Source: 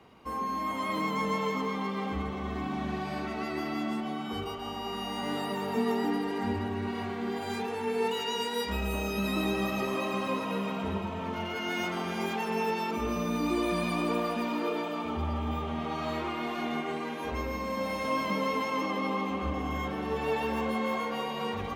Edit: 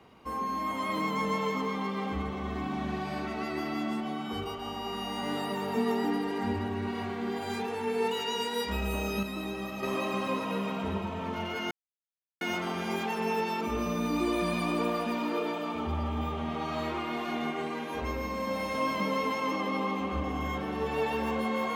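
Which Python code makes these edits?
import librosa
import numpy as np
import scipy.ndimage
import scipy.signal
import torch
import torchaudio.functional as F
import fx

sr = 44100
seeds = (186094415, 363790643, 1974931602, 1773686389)

y = fx.edit(x, sr, fx.clip_gain(start_s=9.23, length_s=0.6, db=-6.5),
    fx.insert_silence(at_s=11.71, length_s=0.7), tone=tone)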